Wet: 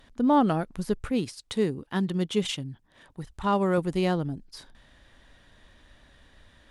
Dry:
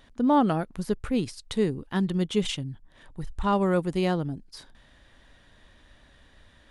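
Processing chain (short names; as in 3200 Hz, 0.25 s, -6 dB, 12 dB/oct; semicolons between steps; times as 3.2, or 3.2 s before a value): 1.08–3.78 HPF 120 Hz 6 dB/oct; SBC 128 kbps 48000 Hz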